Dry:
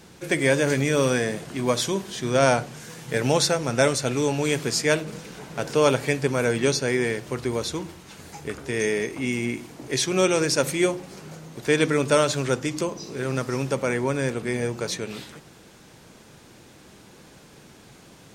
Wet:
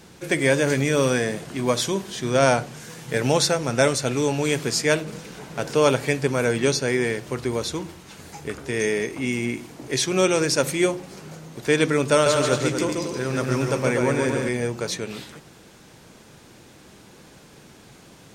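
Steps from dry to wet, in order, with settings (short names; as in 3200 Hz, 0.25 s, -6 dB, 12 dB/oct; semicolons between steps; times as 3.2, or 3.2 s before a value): 12.12–14.49 bouncing-ball echo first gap 0.14 s, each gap 0.7×, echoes 5; gain +1 dB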